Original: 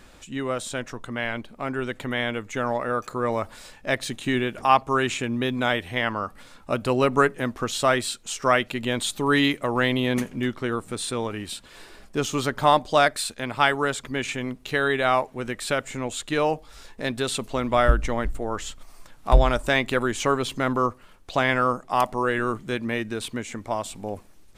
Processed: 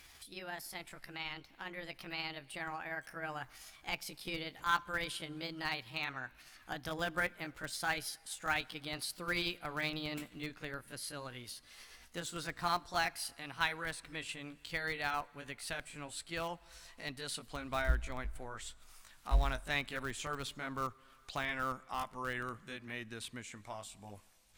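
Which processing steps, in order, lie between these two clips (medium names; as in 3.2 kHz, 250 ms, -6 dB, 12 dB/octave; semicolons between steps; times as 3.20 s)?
pitch bend over the whole clip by +5.5 st ending unshifted; treble shelf 2.1 kHz -7.5 dB; in parallel at -9 dB: Schmitt trigger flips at -17 dBFS; on the sum: amplifier tone stack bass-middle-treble 5-5-5; on a send at -24 dB: reverberation RT60 2.2 s, pre-delay 31 ms; on the sum: tape noise reduction on one side only encoder only; trim +1.5 dB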